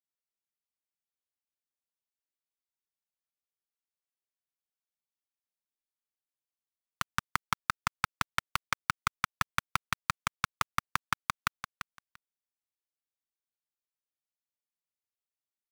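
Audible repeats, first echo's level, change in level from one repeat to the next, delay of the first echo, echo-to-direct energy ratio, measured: 2, −9.0 dB, −16.0 dB, 342 ms, −9.0 dB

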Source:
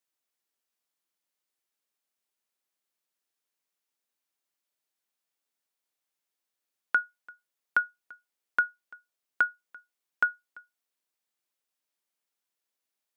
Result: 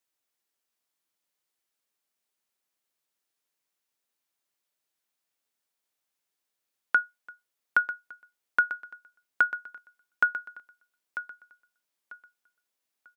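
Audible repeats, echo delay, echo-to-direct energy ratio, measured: 2, 944 ms, −11.5 dB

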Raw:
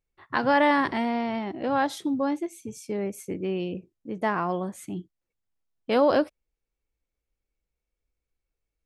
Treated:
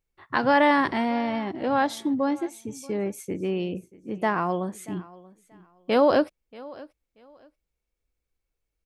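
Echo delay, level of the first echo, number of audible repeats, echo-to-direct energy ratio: 633 ms, −21.0 dB, 2, −21.0 dB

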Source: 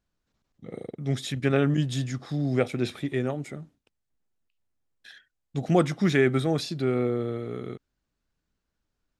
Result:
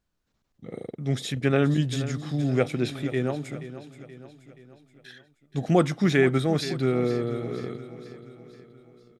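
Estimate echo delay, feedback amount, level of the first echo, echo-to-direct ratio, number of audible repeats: 477 ms, 52%, −14.0 dB, −12.5 dB, 4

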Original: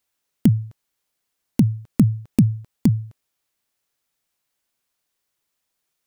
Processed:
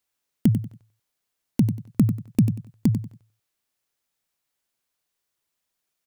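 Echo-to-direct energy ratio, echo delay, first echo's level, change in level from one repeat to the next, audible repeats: −9.0 dB, 94 ms, −9.5 dB, −12.5 dB, 3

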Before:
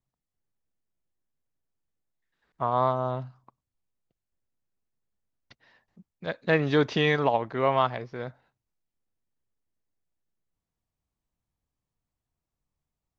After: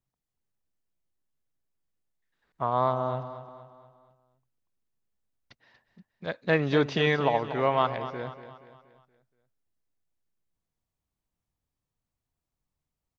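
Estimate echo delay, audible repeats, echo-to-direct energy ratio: 237 ms, 4, −11.5 dB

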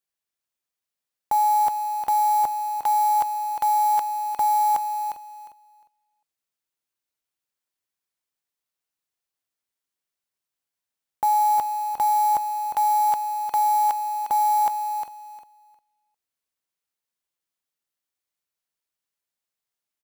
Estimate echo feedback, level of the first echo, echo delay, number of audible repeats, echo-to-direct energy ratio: 18%, −8.0 dB, 355 ms, 2, −8.0 dB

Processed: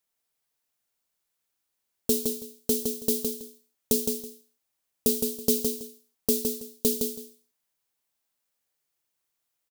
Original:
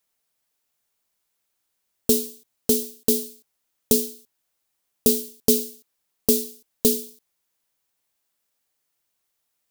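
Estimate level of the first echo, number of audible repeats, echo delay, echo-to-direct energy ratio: −5.0 dB, 2, 163 ms, −5.0 dB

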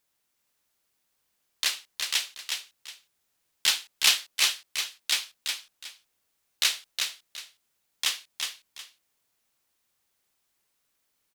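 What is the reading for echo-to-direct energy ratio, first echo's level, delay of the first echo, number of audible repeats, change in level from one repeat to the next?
−4.5 dB, −5.0 dB, 365 ms, 2, −11.5 dB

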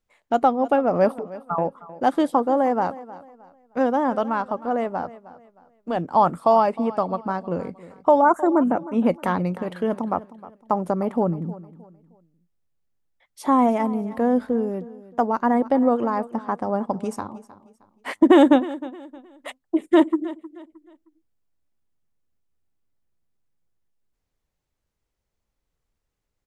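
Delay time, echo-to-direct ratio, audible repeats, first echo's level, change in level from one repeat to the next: 311 ms, −17.0 dB, 2, −17.5 dB, −10.0 dB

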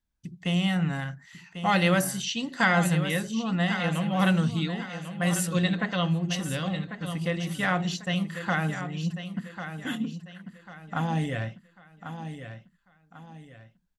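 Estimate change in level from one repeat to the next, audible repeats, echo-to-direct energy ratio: −9.0 dB, 3, −9.5 dB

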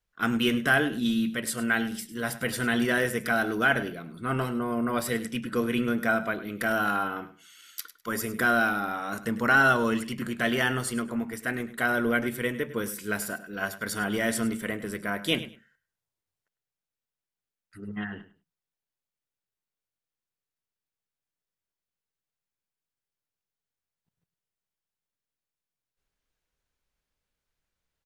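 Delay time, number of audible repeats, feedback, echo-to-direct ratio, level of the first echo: 102 ms, 2, 19%, −15.0 dB, −15.0 dB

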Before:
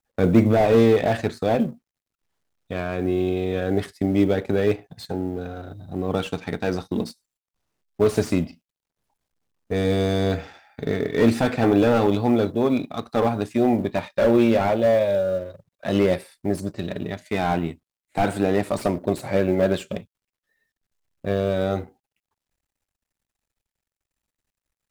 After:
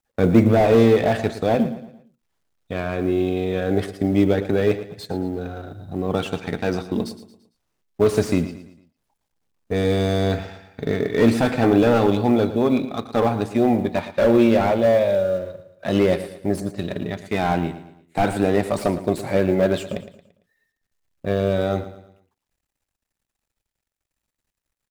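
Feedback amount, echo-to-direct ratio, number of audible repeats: 41%, −12.5 dB, 3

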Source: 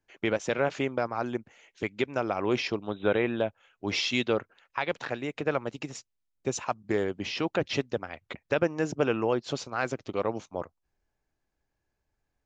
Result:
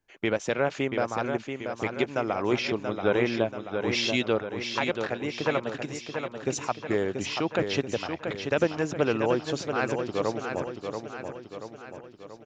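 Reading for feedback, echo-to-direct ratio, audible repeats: 53%, −5.0 dB, 6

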